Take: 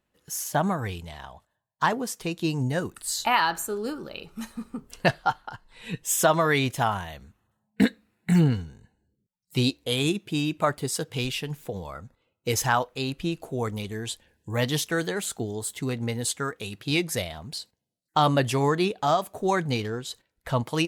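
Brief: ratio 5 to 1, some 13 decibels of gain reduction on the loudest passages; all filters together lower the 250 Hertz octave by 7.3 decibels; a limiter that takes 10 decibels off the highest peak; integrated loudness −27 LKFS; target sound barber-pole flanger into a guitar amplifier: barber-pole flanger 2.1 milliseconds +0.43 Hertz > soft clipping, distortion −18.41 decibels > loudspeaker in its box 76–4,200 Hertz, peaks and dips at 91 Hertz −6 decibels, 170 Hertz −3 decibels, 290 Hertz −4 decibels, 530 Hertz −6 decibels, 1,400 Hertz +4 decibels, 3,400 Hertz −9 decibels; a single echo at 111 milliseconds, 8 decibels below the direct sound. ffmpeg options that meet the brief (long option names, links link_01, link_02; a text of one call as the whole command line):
ffmpeg -i in.wav -filter_complex "[0:a]equalizer=frequency=250:width_type=o:gain=-7,acompressor=threshold=-32dB:ratio=5,alimiter=level_in=3.5dB:limit=-24dB:level=0:latency=1,volume=-3.5dB,aecho=1:1:111:0.398,asplit=2[link_01][link_02];[link_02]adelay=2.1,afreqshift=0.43[link_03];[link_01][link_03]amix=inputs=2:normalize=1,asoftclip=threshold=-33dB,highpass=76,equalizer=frequency=91:width_type=q:width=4:gain=-6,equalizer=frequency=170:width_type=q:width=4:gain=-3,equalizer=frequency=290:width_type=q:width=4:gain=-4,equalizer=frequency=530:width_type=q:width=4:gain=-6,equalizer=frequency=1400:width_type=q:width=4:gain=4,equalizer=frequency=3400:width_type=q:width=4:gain=-9,lowpass=frequency=4200:width=0.5412,lowpass=frequency=4200:width=1.3066,volume=18dB" out.wav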